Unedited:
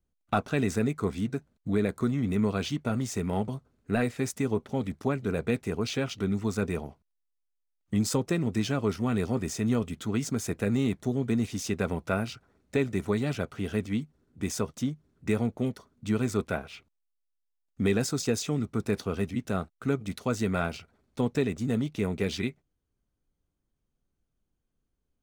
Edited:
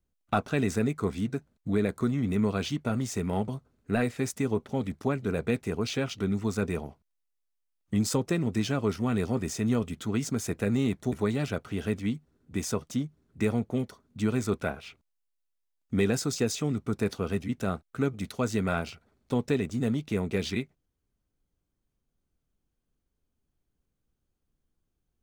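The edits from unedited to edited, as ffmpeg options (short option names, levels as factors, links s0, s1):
-filter_complex "[0:a]asplit=2[s0][s1];[s0]atrim=end=11.122[s2];[s1]atrim=start=12.988[s3];[s2][s3]acrossfade=d=0.004:c1=hsin:c2=hsin"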